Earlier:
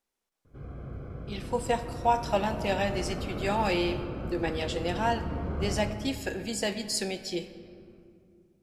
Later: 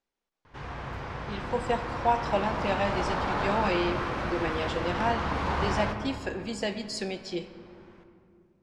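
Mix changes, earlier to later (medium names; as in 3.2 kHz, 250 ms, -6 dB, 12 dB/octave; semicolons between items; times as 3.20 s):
background: remove boxcar filter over 48 samples; master: add distance through air 93 m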